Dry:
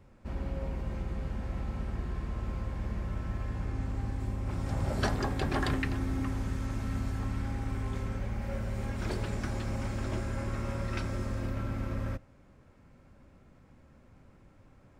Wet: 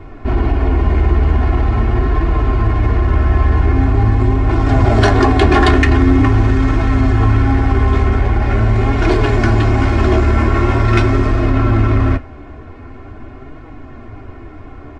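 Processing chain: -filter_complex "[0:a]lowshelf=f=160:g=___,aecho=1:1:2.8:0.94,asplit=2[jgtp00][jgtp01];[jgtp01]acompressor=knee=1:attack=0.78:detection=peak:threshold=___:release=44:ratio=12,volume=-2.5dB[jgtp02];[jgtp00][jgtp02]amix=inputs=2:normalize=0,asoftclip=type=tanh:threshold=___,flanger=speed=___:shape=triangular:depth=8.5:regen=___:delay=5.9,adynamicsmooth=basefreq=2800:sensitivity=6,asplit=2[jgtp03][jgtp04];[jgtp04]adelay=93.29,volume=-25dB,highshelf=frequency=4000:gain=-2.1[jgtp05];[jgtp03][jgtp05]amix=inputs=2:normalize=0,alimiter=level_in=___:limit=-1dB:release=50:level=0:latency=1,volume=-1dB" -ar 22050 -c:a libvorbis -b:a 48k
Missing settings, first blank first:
-2, -37dB, -17.5dB, 0.44, 47, 24dB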